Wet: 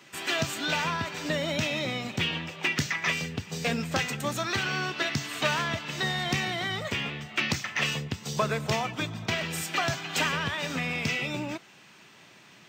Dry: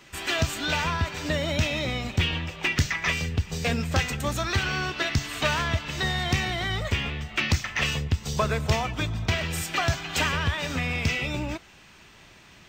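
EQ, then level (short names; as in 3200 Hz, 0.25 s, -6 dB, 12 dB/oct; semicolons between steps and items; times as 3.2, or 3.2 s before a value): HPF 130 Hz 24 dB/oct; -1.5 dB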